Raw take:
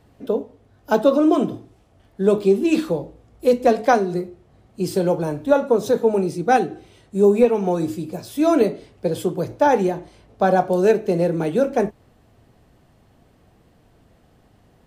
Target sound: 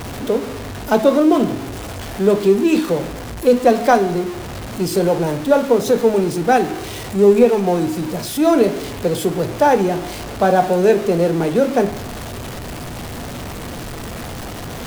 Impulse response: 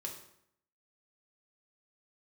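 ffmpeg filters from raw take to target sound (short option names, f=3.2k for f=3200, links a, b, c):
-filter_complex "[0:a]aeval=exprs='val(0)+0.5*0.0531*sgn(val(0))':c=same,asplit=2[a][b];[1:a]atrim=start_sample=2205,asetrate=28665,aresample=44100[c];[b][c]afir=irnorm=-1:irlink=0,volume=-10.5dB[d];[a][d]amix=inputs=2:normalize=0"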